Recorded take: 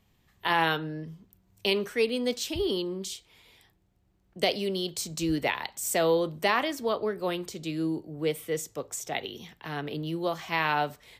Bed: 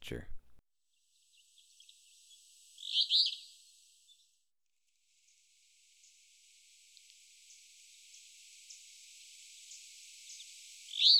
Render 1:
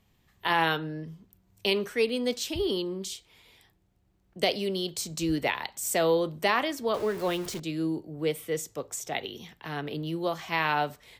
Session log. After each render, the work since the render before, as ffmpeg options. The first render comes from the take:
-filter_complex "[0:a]asettb=1/sr,asplit=3[a][b][c];[a]atrim=end=6.944[d];[b]atrim=start=6.94:end=7.6,asetpts=PTS-STARTPTS,afade=t=in:d=0.004:c=qsin,afade=t=out:st=0.656:d=0.004:c=qsin,aeval=exprs='val(0)+0.5*0.0158*sgn(val(0))':c=same[e];[c]atrim=start=7.596[f];[d][e]acrossfade=d=0.004:c1=hsin:c2=qsin[g];[g][f]acrossfade=d=0.004:c1=qsin:c2=hsin"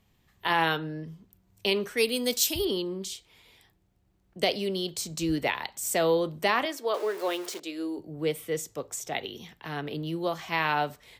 -filter_complex "[0:a]asettb=1/sr,asplit=3[a][b][c];[a]atrim=end=1.974[d];[b]atrim=start=1.97:end=2.65,asetpts=PTS-STARTPTS,afade=t=in:d=0.004:c=qsin,afade=t=out:st=0.676:d=0.004:c=qsin,aemphasis=mode=production:type=75fm[e];[c]atrim=start=2.646[f];[d][e]acrossfade=d=0.004:c1=hsin:c2=qsin[g];[g][f]acrossfade=d=0.004:c1=qsin:c2=hsin,asettb=1/sr,asplit=3[h][i][j];[h]atrim=end=6.654[k];[i]atrim=start=6.65:end=7.98,asetpts=PTS-STARTPTS,afade=t=in:d=0.004:c=qsin,afade=t=out:st=1.326:d=0.004:c=qsin,highpass=f=330:w=0.5412,highpass=f=330:w=1.3066[l];[j]atrim=start=7.976[m];[k][l]acrossfade=d=0.004:c1=hsin:c2=qsin[n];[n][m]acrossfade=d=0.004:c1=qsin:c2=hsin"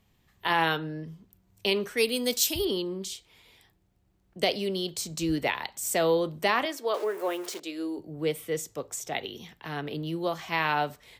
-filter_complex "[0:a]asettb=1/sr,asplit=3[a][b][c];[a]atrim=end=7.044[d];[b]atrim=start=7.04:end=7.44,asetpts=PTS-STARTPTS,afade=t=in:d=0.004:c=qsin,afade=t=out:st=0.396:d=0.004:c=qsin,equalizer=f=4.3k:w=1.2:g=-11[e];[c]atrim=start=7.436[f];[d][e]acrossfade=d=0.004:c1=hsin:c2=qsin[g];[g][f]acrossfade=d=0.004:c1=qsin:c2=hsin"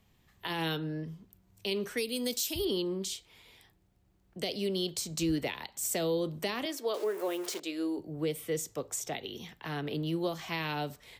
-filter_complex "[0:a]acrossover=split=460|3000[a][b][c];[b]acompressor=threshold=-37dB:ratio=6[d];[a][d][c]amix=inputs=3:normalize=0,alimiter=limit=-22dB:level=0:latency=1:release=203"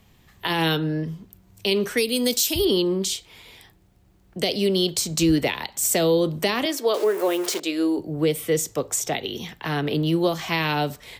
-af "volume=11dB"

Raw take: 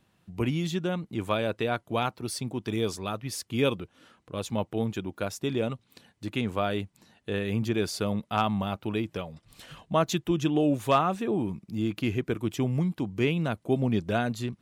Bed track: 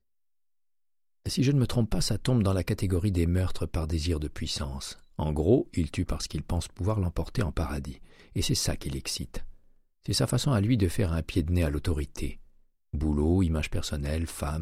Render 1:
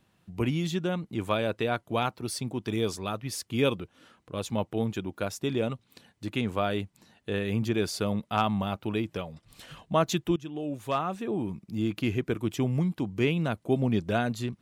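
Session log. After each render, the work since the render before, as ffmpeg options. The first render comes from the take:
-filter_complex "[0:a]asplit=2[a][b];[a]atrim=end=10.36,asetpts=PTS-STARTPTS,afade=t=out:st=10.356:d=0.004:c=hsin:silence=0.158489[c];[b]atrim=start=10.36,asetpts=PTS-STARTPTS,afade=t=in:d=1.45:silence=0.158489[d];[c][d]concat=n=2:v=0:a=1"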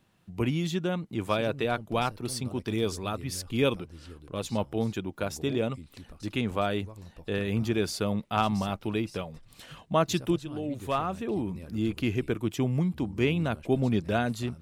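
-filter_complex "[1:a]volume=-18.5dB[a];[0:a][a]amix=inputs=2:normalize=0"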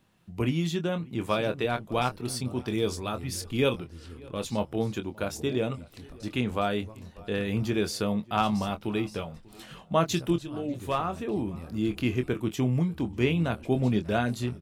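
-filter_complex "[0:a]asplit=2[a][b];[b]adelay=24,volume=-9dB[c];[a][c]amix=inputs=2:normalize=0,asplit=2[d][e];[e]adelay=592,lowpass=f=1.9k:p=1,volume=-23dB,asplit=2[f][g];[g]adelay=592,lowpass=f=1.9k:p=1,volume=0.39,asplit=2[h][i];[i]adelay=592,lowpass=f=1.9k:p=1,volume=0.39[j];[d][f][h][j]amix=inputs=4:normalize=0"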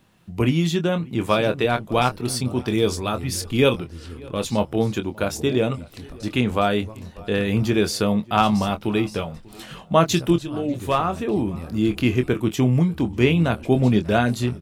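-af "volume=7.5dB"

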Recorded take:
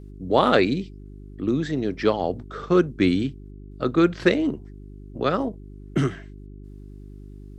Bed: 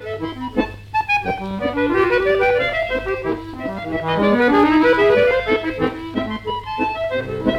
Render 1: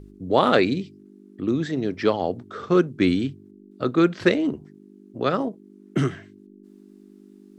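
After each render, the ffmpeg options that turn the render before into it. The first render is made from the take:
-af "bandreject=f=50:t=h:w=4,bandreject=f=100:t=h:w=4,bandreject=f=150:t=h:w=4"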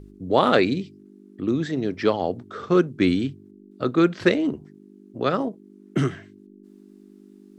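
-af anull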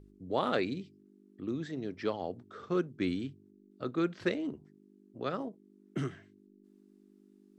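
-af "volume=-12.5dB"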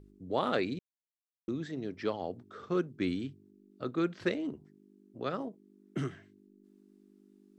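-filter_complex "[0:a]asplit=3[a][b][c];[a]atrim=end=0.79,asetpts=PTS-STARTPTS,afade=t=out:st=0.786:d=0.004:c=hsin[d];[b]atrim=start=0.79:end=1.48,asetpts=PTS-STARTPTS,volume=0[e];[c]atrim=start=1.48,asetpts=PTS-STARTPTS,afade=t=in:d=0.004:c=hsin[f];[d][e][f]concat=n=3:v=0:a=1"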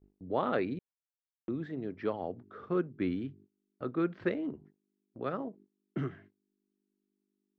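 -af "lowpass=2.1k,agate=range=-22dB:threshold=-55dB:ratio=16:detection=peak"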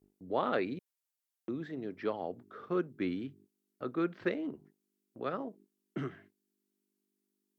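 -af "highpass=f=190:p=1,aemphasis=mode=production:type=cd"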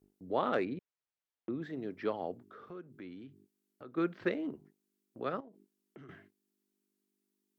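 -filter_complex "[0:a]asettb=1/sr,asplit=3[a][b][c];[a]atrim=end=0.534[d];[b]atrim=start=0.53:end=1.62,asetpts=PTS-STARTPTS,afade=t=in:d=0.004:c=qsin,afade=t=out:st=1.086:d=0.004:c=qsin,adynamicsmooth=sensitivity=2.5:basefreq=3.6k[e];[c]atrim=start=1.616[f];[d][e]acrossfade=d=0.004:c1=hsin:c2=qsin[g];[g][f]acrossfade=d=0.004:c1=qsin:c2=hsin,asplit=3[h][i][j];[h]afade=t=out:st=2.37:d=0.02[k];[i]acompressor=threshold=-50dB:ratio=2.5:attack=3.2:release=140:knee=1:detection=peak,afade=t=in:st=2.37:d=0.02,afade=t=out:st=3.96:d=0.02[l];[j]afade=t=in:st=3.96:d=0.02[m];[k][l][m]amix=inputs=3:normalize=0,asettb=1/sr,asplit=3[n][o][p];[n]atrim=end=5.404[q];[o]atrim=start=5.4:end=6.09,asetpts=PTS-STARTPTS,afade=t=in:d=0.004:c=qsin,afade=t=out:st=0.686:d=0.004:c=qsin,acompressor=threshold=-49dB:ratio=12:attack=3.2:release=140:knee=1:detection=peak[r];[p]atrim=start=6.086[s];[q][r]acrossfade=d=0.004:c1=hsin:c2=qsin[t];[t][s]acrossfade=d=0.004:c1=qsin:c2=hsin"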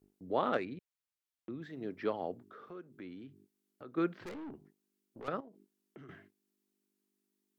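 -filter_complex "[0:a]asettb=1/sr,asplit=3[a][b][c];[a]atrim=end=0.574[d];[b]atrim=start=0.57:end=1.81,asetpts=PTS-STARTPTS,afade=t=in:d=0.004:c=qsin,afade=t=out:st=1.236:d=0.004:c=qsin,equalizer=f=490:w=0.35:g=-6.5[e];[c]atrim=start=1.806[f];[d][e]acrossfade=d=0.004:c1=hsin:c2=qsin[g];[g][f]acrossfade=d=0.004:c1=qsin:c2=hsin,asettb=1/sr,asplit=3[h][i][j];[h]atrim=end=2.534[k];[i]atrim=start=2.53:end=2.98,asetpts=PTS-STARTPTS,afade=t=in:d=0.004:c=qsin,afade=t=out:st=0.446:d=0.004:c=qsin,equalizer=f=77:t=o:w=1.9:g=-9.5[l];[j]atrim=start=2.976[m];[k][l]acrossfade=d=0.004:c1=hsin:c2=qsin[n];[n][m]acrossfade=d=0.004:c1=qsin:c2=hsin,asettb=1/sr,asplit=3[o][p][q];[o]atrim=end=4.254[r];[p]atrim=start=4.25:end=5.28,asetpts=PTS-STARTPTS,afade=t=in:d=0.004:c=qsin,afade=t=out:st=1.026:d=0.004:c=qsin,aeval=exprs='(tanh(126*val(0)+0.2)-tanh(0.2))/126':c=same[s];[q]atrim=start=5.276[t];[r][s]acrossfade=d=0.004:c1=hsin:c2=qsin[u];[u][t]acrossfade=d=0.004:c1=qsin:c2=hsin"

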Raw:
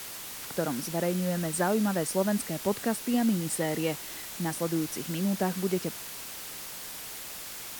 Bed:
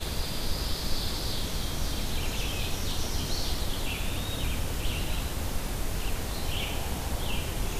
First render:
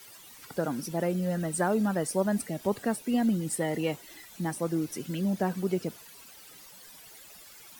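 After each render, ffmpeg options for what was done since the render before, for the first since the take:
-af "afftdn=nr=14:nf=-41"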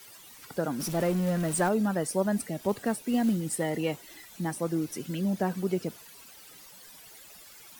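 -filter_complex "[0:a]asettb=1/sr,asplit=3[a][b][c];[a]atrim=end=0.804[d];[b]atrim=start=0.8:end=1.69,asetpts=PTS-STARTPTS,afade=t=in:d=0.004:c=qsin,afade=t=out:st=0.886:d=0.004:c=qsin,aeval=exprs='val(0)+0.5*0.0224*sgn(val(0))':c=same[e];[c]atrim=start=1.686[f];[d][e]acrossfade=d=0.004:c1=hsin:c2=qsin[g];[g][f]acrossfade=d=0.004:c1=qsin:c2=hsin,asettb=1/sr,asplit=3[h][i][j];[h]atrim=end=2.694[k];[i]atrim=start=2.69:end=3.7,asetpts=PTS-STARTPTS,afade=t=in:d=0.004:c=qsin,afade=t=out:st=1.006:d=0.004:c=qsin,acrusher=bits=6:mode=log:mix=0:aa=0.000001[l];[j]atrim=start=3.696[m];[k][l]acrossfade=d=0.004:c1=hsin:c2=qsin[n];[n][m]acrossfade=d=0.004:c1=qsin:c2=hsin"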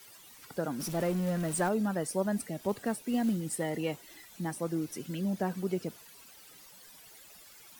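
-af "volume=-3.5dB"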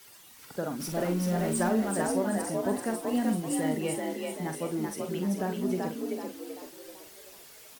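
-filter_complex "[0:a]asplit=2[a][b];[b]adelay=45,volume=-7.5dB[c];[a][c]amix=inputs=2:normalize=0,asplit=7[d][e][f][g][h][i][j];[e]adelay=384,afreqshift=48,volume=-3dB[k];[f]adelay=768,afreqshift=96,volume=-10.3dB[l];[g]adelay=1152,afreqshift=144,volume=-17.7dB[m];[h]adelay=1536,afreqshift=192,volume=-25dB[n];[i]adelay=1920,afreqshift=240,volume=-32.3dB[o];[j]adelay=2304,afreqshift=288,volume=-39.7dB[p];[d][k][l][m][n][o][p]amix=inputs=7:normalize=0"

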